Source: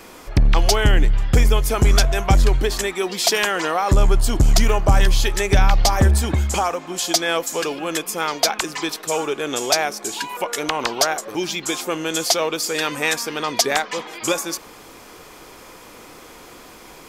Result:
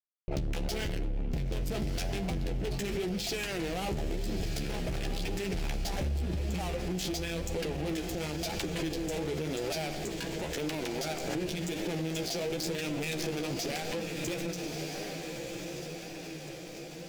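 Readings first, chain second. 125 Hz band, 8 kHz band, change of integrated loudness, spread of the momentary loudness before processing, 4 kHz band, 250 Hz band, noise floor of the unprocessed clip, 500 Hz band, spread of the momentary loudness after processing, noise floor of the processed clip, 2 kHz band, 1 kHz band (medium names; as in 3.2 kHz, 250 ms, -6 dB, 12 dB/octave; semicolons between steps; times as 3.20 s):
-14.0 dB, -17.0 dB, -14.5 dB, 8 LU, -14.5 dB, -7.5 dB, -43 dBFS, -11.5 dB, 5 LU, -43 dBFS, -15.0 dB, -18.5 dB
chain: local Wiener filter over 25 samples; fifteen-band graphic EQ 160 Hz +10 dB, 2.5 kHz +6 dB, 10 kHz -12 dB; fuzz box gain 24 dB, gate -31 dBFS; peaking EQ 1.1 kHz -12 dB 0.94 oct; simulated room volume 2700 m³, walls furnished, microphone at 0.73 m; compression, threshold -21 dBFS, peak gain reduction 8.5 dB; on a send: echo that smears into a reverb 1283 ms, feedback 57%, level -10.5 dB; on the sum: flange 0.93 Hz, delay 9.4 ms, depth 7.2 ms, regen +28%; peak limiter -26 dBFS, peak gain reduction 11 dB; swell ahead of each attack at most 30 dB/s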